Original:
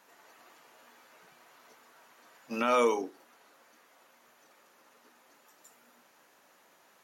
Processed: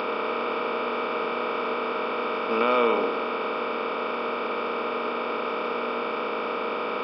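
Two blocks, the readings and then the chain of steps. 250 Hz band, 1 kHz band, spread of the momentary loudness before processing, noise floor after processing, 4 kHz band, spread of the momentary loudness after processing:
+9.0 dB, +12.0 dB, 16 LU, −30 dBFS, +13.0 dB, 6 LU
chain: compressor on every frequency bin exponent 0.2
upward compression, threshold −33 dBFS
downsampling to 11,025 Hz

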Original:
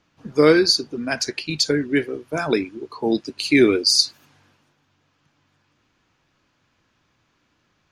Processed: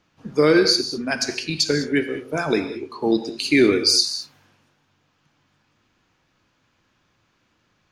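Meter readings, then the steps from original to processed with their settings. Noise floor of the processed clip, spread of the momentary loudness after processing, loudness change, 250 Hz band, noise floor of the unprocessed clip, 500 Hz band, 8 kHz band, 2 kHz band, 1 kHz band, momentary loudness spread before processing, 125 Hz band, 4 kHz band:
−67 dBFS, 11 LU, −0.5 dB, −0.5 dB, −68 dBFS, −0.5 dB, 0.0 dB, 0.0 dB, −0.5 dB, 12 LU, 0.0 dB, 0.0 dB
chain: reverb whose tail is shaped and stops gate 230 ms flat, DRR 8.5 dB
boost into a limiter +5 dB
level −5 dB

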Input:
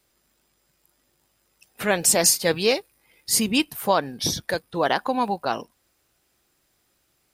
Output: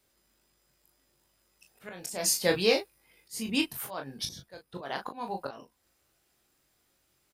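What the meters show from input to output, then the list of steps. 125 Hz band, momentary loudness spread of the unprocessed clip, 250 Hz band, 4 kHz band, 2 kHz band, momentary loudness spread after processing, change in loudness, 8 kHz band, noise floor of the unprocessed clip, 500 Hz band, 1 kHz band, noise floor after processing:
−9.0 dB, 11 LU, −8.5 dB, −7.5 dB, −8.0 dB, 21 LU, −8.5 dB, −11.5 dB, −69 dBFS, −7.5 dB, −13.5 dB, −73 dBFS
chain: volume swells 405 ms
ambience of single reflections 22 ms −6 dB, 37 ms −7.5 dB
level −5 dB

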